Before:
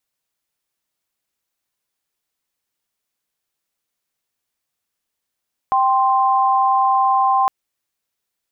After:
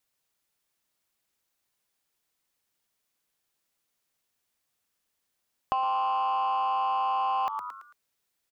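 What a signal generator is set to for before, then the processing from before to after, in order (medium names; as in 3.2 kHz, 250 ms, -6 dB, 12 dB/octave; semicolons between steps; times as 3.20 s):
chord G5/C6 sine, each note -15.5 dBFS 1.76 s
on a send: frequency-shifting echo 111 ms, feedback 35%, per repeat +100 Hz, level -12 dB; on the sum: saturation -13 dBFS; compression 6:1, threshold -26 dBFS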